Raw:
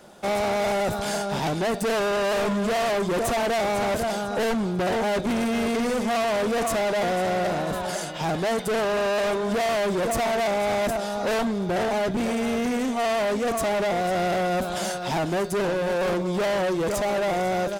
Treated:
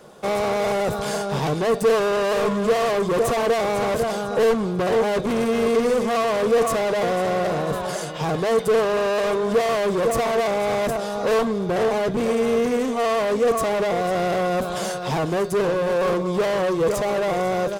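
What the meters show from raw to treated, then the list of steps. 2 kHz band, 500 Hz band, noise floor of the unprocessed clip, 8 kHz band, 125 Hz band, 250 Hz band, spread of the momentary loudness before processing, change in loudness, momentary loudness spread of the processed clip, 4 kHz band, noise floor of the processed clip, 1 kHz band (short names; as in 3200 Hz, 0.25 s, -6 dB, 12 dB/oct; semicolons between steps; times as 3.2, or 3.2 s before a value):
+0.5 dB, +4.5 dB, -30 dBFS, 0.0 dB, +2.5 dB, +1.0 dB, 3 LU, +3.0 dB, 5 LU, 0.0 dB, -28 dBFS, +1.5 dB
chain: bell 140 Hz +8 dB 0.29 oct; small resonant body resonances 460/1100 Hz, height 10 dB, ringing for 35 ms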